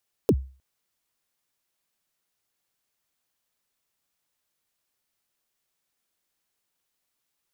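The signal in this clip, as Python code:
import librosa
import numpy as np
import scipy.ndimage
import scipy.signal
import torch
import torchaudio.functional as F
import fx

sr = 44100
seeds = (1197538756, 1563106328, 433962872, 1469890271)

y = fx.drum_kick(sr, seeds[0], length_s=0.31, level_db=-12, start_hz=520.0, end_hz=66.0, sweep_ms=57.0, decay_s=0.37, click=True)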